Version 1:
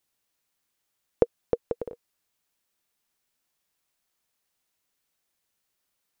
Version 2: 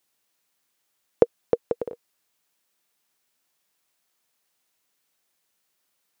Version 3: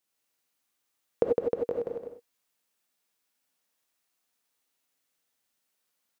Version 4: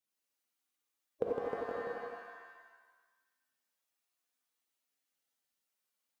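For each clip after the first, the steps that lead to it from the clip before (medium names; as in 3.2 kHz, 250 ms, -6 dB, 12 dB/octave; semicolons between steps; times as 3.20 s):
high-pass 170 Hz 6 dB/octave; trim +4.5 dB
on a send: delay 159 ms -3.5 dB; on the sum: gated-style reverb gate 110 ms rising, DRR 1.5 dB; trim -8.5 dB
coarse spectral quantiser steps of 15 dB; pitch-shifted reverb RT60 1.2 s, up +7 st, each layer -2 dB, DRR 5.5 dB; trim -8.5 dB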